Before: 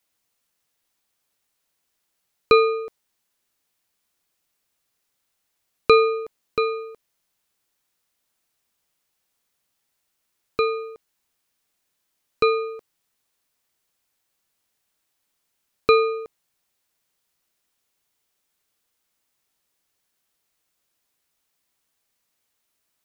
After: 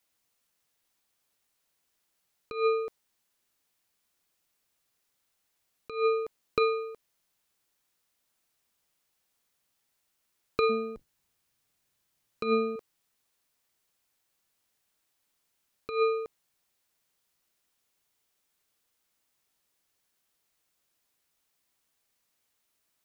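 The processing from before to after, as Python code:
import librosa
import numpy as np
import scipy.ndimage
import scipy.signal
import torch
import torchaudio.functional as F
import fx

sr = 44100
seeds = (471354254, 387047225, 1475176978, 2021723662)

y = fx.octave_divider(x, sr, octaves=1, level_db=3.0, at=(10.69, 12.76))
y = fx.over_compress(y, sr, threshold_db=-20.0, ratio=-0.5)
y = y * librosa.db_to_amplitude(-5.0)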